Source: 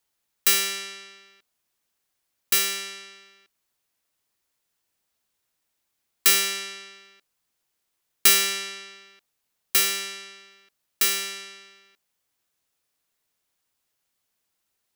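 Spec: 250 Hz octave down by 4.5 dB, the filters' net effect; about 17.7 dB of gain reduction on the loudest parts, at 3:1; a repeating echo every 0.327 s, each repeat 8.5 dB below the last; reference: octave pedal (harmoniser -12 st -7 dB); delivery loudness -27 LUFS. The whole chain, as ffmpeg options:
-filter_complex "[0:a]equalizer=f=250:t=o:g=-8.5,acompressor=threshold=-38dB:ratio=3,aecho=1:1:327|654|981|1308:0.376|0.143|0.0543|0.0206,asplit=2[a][b];[b]asetrate=22050,aresample=44100,atempo=2,volume=-7dB[c];[a][c]amix=inputs=2:normalize=0,volume=10dB"

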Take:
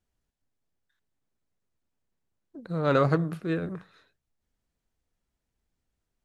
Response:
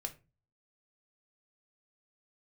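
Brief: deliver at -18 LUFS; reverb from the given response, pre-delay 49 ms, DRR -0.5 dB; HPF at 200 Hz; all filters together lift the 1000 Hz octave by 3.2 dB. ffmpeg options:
-filter_complex "[0:a]highpass=200,equalizer=f=1k:t=o:g=4.5,asplit=2[a][b];[1:a]atrim=start_sample=2205,adelay=49[c];[b][c]afir=irnorm=-1:irlink=0,volume=2dB[d];[a][d]amix=inputs=2:normalize=0,volume=5dB"

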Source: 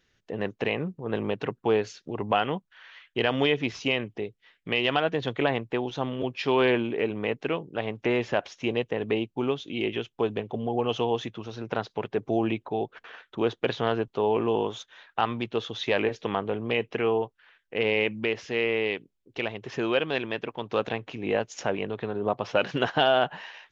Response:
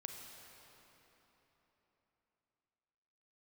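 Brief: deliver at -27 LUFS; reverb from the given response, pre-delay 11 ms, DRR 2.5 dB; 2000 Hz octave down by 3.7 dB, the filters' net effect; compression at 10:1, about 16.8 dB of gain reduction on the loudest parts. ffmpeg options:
-filter_complex "[0:a]equalizer=f=2k:t=o:g=-5,acompressor=threshold=-36dB:ratio=10,asplit=2[a][b];[1:a]atrim=start_sample=2205,adelay=11[c];[b][c]afir=irnorm=-1:irlink=0,volume=0.5dB[d];[a][d]amix=inputs=2:normalize=0,volume=12.5dB"

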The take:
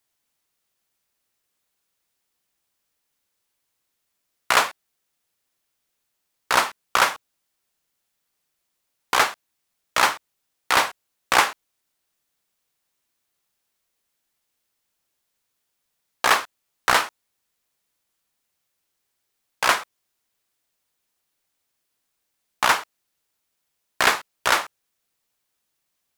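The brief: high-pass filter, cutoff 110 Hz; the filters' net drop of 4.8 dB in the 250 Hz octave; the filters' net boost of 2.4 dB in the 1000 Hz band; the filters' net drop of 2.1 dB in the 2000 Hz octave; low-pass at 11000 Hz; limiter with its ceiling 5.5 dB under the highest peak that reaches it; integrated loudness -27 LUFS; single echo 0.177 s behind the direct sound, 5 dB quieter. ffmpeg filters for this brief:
-af "highpass=110,lowpass=11k,equalizer=f=250:t=o:g=-7,equalizer=f=1k:t=o:g=4.5,equalizer=f=2k:t=o:g=-4.5,alimiter=limit=-7dB:level=0:latency=1,aecho=1:1:177:0.562,volume=-3.5dB"

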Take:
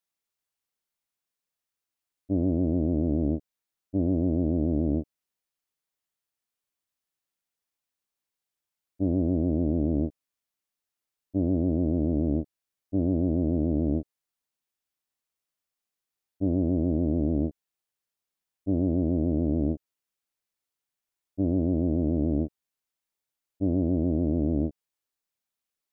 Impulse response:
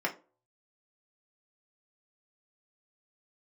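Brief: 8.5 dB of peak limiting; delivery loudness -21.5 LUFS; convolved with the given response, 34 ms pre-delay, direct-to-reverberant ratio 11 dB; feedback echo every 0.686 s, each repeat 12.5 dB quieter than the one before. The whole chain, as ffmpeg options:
-filter_complex "[0:a]alimiter=limit=-23dB:level=0:latency=1,aecho=1:1:686|1372|2058:0.237|0.0569|0.0137,asplit=2[a][b];[1:a]atrim=start_sample=2205,adelay=34[c];[b][c]afir=irnorm=-1:irlink=0,volume=-18.5dB[d];[a][d]amix=inputs=2:normalize=0,volume=13.5dB"

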